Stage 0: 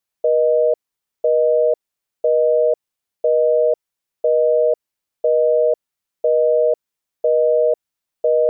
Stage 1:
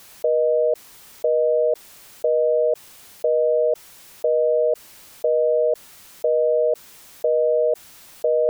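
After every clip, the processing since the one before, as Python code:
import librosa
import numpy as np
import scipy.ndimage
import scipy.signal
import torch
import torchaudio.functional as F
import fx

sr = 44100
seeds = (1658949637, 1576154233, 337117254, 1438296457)

y = fx.env_flatten(x, sr, amount_pct=70)
y = y * librosa.db_to_amplitude(-3.5)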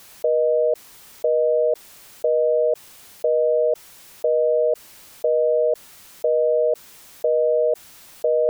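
y = x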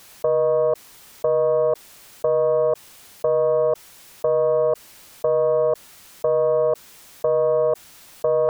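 y = fx.doppler_dist(x, sr, depth_ms=0.42)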